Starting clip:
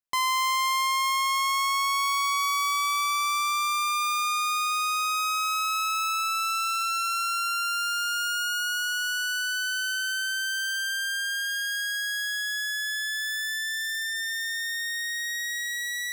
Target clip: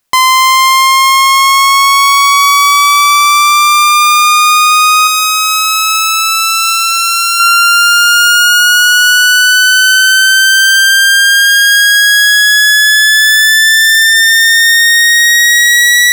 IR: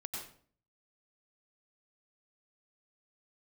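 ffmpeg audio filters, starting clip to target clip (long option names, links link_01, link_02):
-filter_complex "[0:a]asettb=1/sr,asplit=3[link_01][link_02][link_03];[link_01]atrim=end=5.074[link_04];[link_02]atrim=start=5.07:end=7.4,asetpts=PTS-STARTPTS,afade=type=in:duration=0.004:curve=qsin,afade=type=out:start_time=2.326:duration=0.004:curve=qsin,equalizer=frequency=1600:width_type=o:width=1.3:gain=-8.5[link_05];[link_03]atrim=start=7.396[link_06];[link_04][link_05]acrossfade=duration=0.004:curve1=hsin:curve2=qsin[link_07];[link_07][link_06]acrossfade=duration=0.004:curve1=qsin:curve2=hsin,acontrast=31,alimiter=level_in=22dB:limit=-1dB:release=50:level=0:latency=1,volume=-1dB"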